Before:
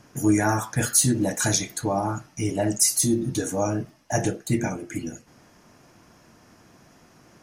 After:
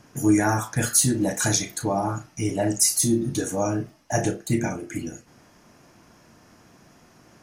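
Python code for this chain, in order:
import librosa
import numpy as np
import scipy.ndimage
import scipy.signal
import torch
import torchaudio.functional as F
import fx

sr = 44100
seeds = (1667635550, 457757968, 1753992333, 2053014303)

y = fx.doubler(x, sr, ms=35.0, db=-11.0)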